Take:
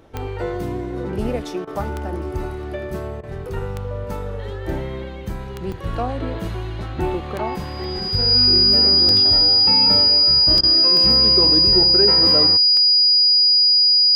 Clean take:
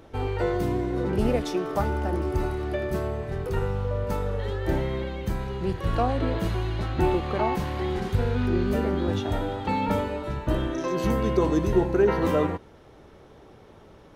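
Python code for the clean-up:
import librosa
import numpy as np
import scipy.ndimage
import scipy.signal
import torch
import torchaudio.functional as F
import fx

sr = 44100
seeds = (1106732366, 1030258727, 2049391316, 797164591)

y = fx.fix_declick_ar(x, sr, threshold=10.0)
y = fx.notch(y, sr, hz=4900.0, q=30.0)
y = fx.fix_interpolate(y, sr, at_s=(1.88, 5.72, 7.84, 9.09, 10.58), length_ms=1.7)
y = fx.fix_interpolate(y, sr, at_s=(1.65, 3.21, 10.61), length_ms=22.0)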